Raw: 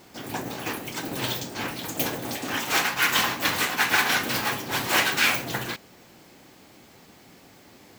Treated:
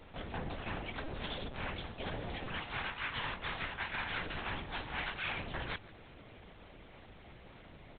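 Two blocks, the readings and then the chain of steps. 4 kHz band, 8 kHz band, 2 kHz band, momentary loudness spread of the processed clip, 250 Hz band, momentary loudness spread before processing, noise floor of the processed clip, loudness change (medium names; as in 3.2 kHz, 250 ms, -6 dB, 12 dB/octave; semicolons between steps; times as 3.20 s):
-16.0 dB, under -40 dB, -14.5 dB, 18 LU, -13.0 dB, 11 LU, -55 dBFS, -15.0 dB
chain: reverse; compression 6:1, threshold -34 dBFS, peak gain reduction 16.5 dB; reverse; echo from a far wall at 26 m, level -20 dB; LPC vocoder at 8 kHz pitch kept; trim -2 dB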